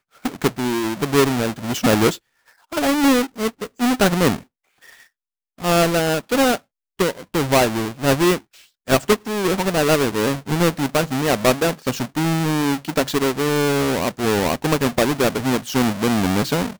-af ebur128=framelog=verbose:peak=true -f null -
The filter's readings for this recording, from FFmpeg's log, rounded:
Integrated loudness:
  I:         -19.6 LUFS
  Threshold: -30.0 LUFS
Loudness range:
  LRA:         1.7 LU
  Threshold: -40.0 LUFS
  LRA low:   -21.0 LUFS
  LRA high:  -19.3 LUFS
True peak:
  Peak:       -5.2 dBFS